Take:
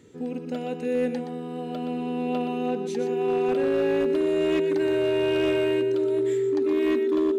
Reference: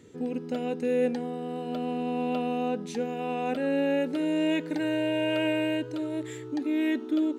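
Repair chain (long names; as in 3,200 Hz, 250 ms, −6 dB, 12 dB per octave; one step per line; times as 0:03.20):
clipped peaks rebuilt −18 dBFS
notch filter 390 Hz, Q 30
echo removal 121 ms −8.5 dB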